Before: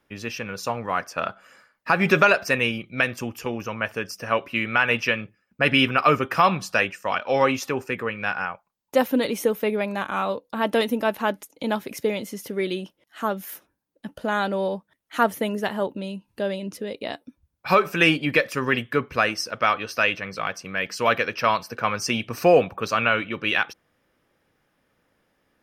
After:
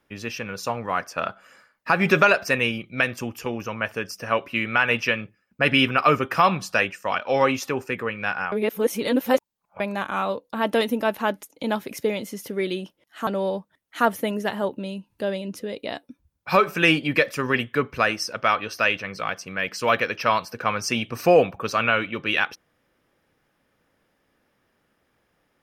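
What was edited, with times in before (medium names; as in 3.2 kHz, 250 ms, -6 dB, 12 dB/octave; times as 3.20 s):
8.52–9.80 s: reverse
13.27–14.45 s: delete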